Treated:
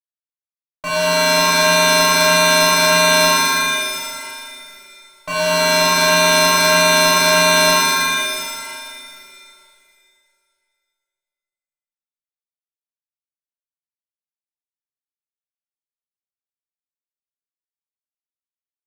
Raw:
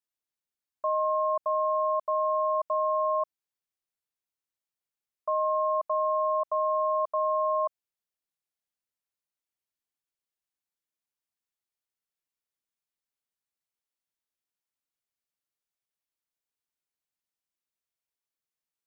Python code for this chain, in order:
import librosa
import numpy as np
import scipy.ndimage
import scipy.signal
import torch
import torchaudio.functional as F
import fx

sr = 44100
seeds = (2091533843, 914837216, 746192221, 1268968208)

y = fx.fuzz(x, sr, gain_db=42.0, gate_db=-51.0)
y = fx.rev_shimmer(y, sr, seeds[0], rt60_s=2.2, semitones=7, shimmer_db=-2, drr_db=-9.5)
y = y * librosa.db_to_amplitude(-11.0)